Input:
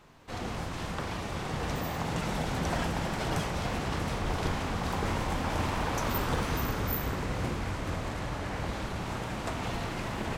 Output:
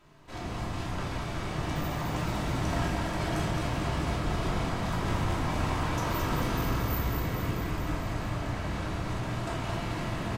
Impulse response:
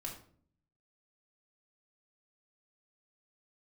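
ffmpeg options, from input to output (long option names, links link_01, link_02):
-filter_complex "[0:a]aecho=1:1:218|436|654|872|1090|1308|1526|1744:0.531|0.319|0.191|0.115|0.0688|0.0413|0.0248|0.0149[link_01];[1:a]atrim=start_sample=2205[link_02];[link_01][link_02]afir=irnorm=-1:irlink=0"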